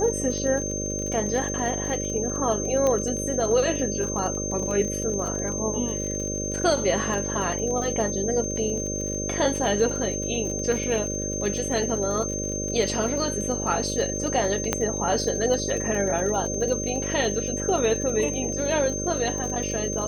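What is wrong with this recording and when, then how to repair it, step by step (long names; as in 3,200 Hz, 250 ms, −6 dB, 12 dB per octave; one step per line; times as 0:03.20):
mains buzz 50 Hz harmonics 12 −31 dBFS
surface crackle 38 per second −30 dBFS
whistle 6,300 Hz −30 dBFS
0:02.87: click −12 dBFS
0:14.73: click −7 dBFS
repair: click removal
hum removal 50 Hz, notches 12
notch filter 6,300 Hz, Q 30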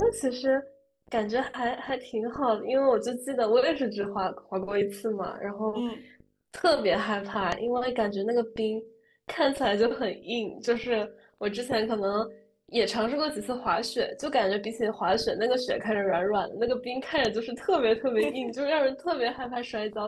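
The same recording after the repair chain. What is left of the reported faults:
0:02.87: click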